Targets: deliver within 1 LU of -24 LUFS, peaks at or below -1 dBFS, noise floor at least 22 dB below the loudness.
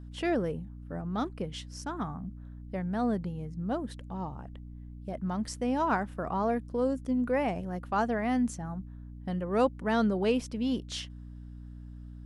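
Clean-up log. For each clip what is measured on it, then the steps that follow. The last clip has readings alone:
hum 60 Hz; harmonics up to 300 Hz; hum level -41 dBFS; loudness -32.0 LUFS; peak -14.0 dBFS; loudness target -24.0 LUFS
-> notches 60/120/180/240/300 Hz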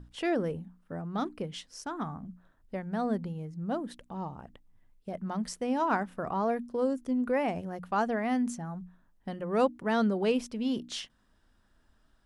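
hum none; loudness -32.0 LUFS; peak -14.0 dBFS; loudness target -24.0 LUFS
-> gain +8 dB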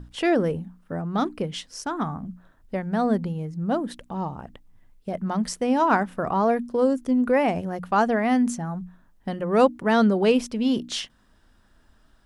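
loudness -24.5 LUFS; peak -6.0 dBFS; noise floor -60 dBFS

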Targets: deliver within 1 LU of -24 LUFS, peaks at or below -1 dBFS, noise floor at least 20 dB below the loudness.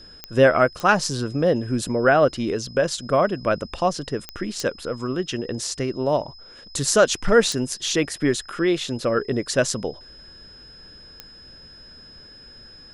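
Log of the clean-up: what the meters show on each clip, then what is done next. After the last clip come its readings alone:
clicks 6; steady tone 5100 Hz; tone level -44 dBFS; loudness -22.0 LUFS; peak -3.0 dBFS; loudness target -24.0 LUFS
-> de-click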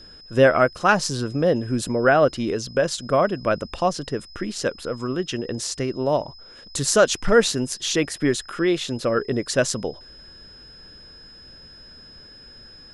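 clicks 0; steady tone 5100 Hz; tone level -44 dBFS
-> notch 5100 Hz, Q 30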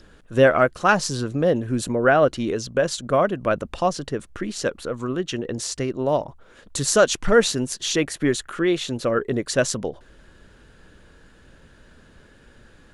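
steady tone none; loudness -22.0 LUFS; peak -3.0 dBFS; loudness target -24.0 LUFS
-> gain -2 dB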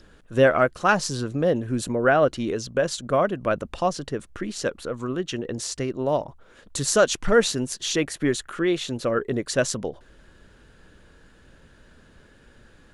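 loudness -24.0 LUFS; peak -5.0 dBFS; noise floor -54 dBFS

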